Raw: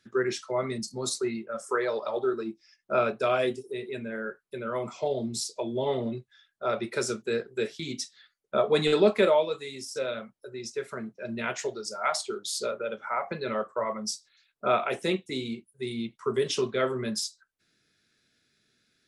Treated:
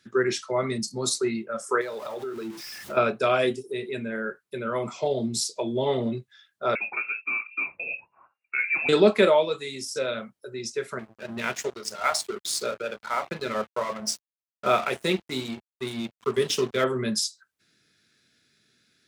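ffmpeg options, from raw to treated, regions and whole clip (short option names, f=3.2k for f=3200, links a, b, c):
-filter_complex "[0:a]asettb=1/sr,asplit=3[a][b][c];[a]atrim=end=1.814[d];[b]atrim=start=1.81:end=2.97,asetpts=PTS-STARTPTS,afade=t=in:d=0.004:c=qsin,afade=t=out:st=1.156:d=0.004:c=qsin,aeval=exprs='val(0)+0.5*0.0106*sgn(val(0))':c=same,acompressor=threshold=-35dB:ratio=4:attack=3.2:release=140:knee=1:detection=peak[e];[c]atrim=start=2.966[f];[d][e]acrossfade=d=0.004:c1=hsin:c2=qsin[g];[g][f]acrossfade=d=0.004:c1=qsin:c2=hsin,asettb=1/sr,asplit=3[h][i][j];[h]atrim=end=6.754[k];[i]atrim=start=6.75:end=8.89,asetpts=PTS-STARTPTS,afade=t=in:d=0.004:c=qsin,afade=t=out:st=2.136:d=0.004:c=qsin,acompressor=threshold=-32dB:ratio=2:attack=3.2:release=140:knee=1:detection=peak,lowpass=f=2.4k:t=q:w=0.5098,lowpass=f=2.4k:t=q:w=0.6013,lowpass=f=2.4k:t=q:w=0.9,lowpass=f=2.4k:t=q:w=2.563,afreqshift=-2800[l];[j]atrim=start=8.886[m];[k][l]acrossfade=d=0.004:c1=hsin:c2=qsin[n];[n][m]acrossfade=d=0.004:c1=qsin:c2=hsin,asettb=1/sr,asplit=3[o][p][q];[o]atrim=end=10.994[r];[p]atrim=start=10.99:end=16.84,asetpts=PTS-STARTPTS,afade=t=in:d=0.004:c=qsin,afade=t=out:st=5.846:d=0.004:c=qsin,highshelf=f=8.6k:g=3.5,bandreject=f=111.1:t=h:w=4,bandreject=f=222.2:t=h:w=4,bandreject=f=333.3:t=h:w=4,bandreject=f=444.4:t=h:w=4,bandreject=f=555.5:t=h:w=4,bandreject=f=666.6:t=h:w=4,bandreject=f=777.7:t=h:w=4,bandreject=f=888.8:t=h:w=4,aeval=exprs='sgn(val(0))*max(abs(val(0))-0.00841,0)':c=same[s];[q]atrim=start=16.836[t];[r][s]acrossfade=d=0.004:c1=hsin:c2=qsin[u];[u][t]acrossfade=d=0.004:c1=qsin:c2=hsin,highpass=75,equalizer=f=630:t=o:w=1.9:g=-2.5,volume=5dB"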